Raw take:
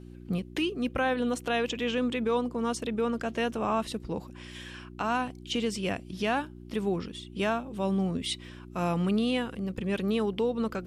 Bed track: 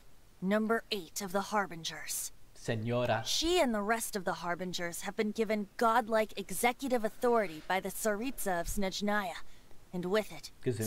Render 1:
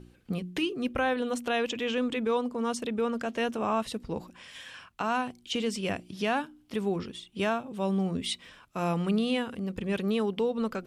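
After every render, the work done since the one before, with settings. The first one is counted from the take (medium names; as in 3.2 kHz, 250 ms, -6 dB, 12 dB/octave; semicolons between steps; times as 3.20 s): de-hum 60 Hz, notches 6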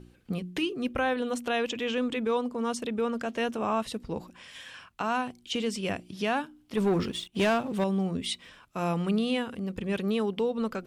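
6.77–7.84 s: waveshaping leveller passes 2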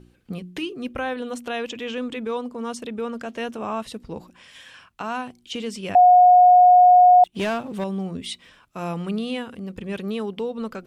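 5.95–7.24 s: bleep 723 Hz -8.5 dBFS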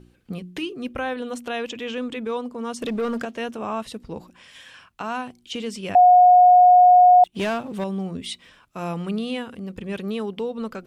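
2.81–3.25 s: waveshaping leveller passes 2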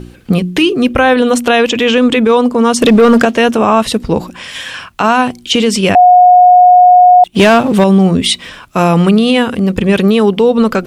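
in parallel at +2 dB: compression, threshold -22 dBFS, peak gain reduction 10.5 dB; on the sum: loudness maximiser +14 dB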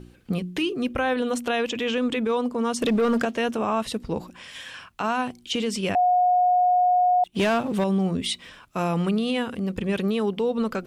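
trim -15 dB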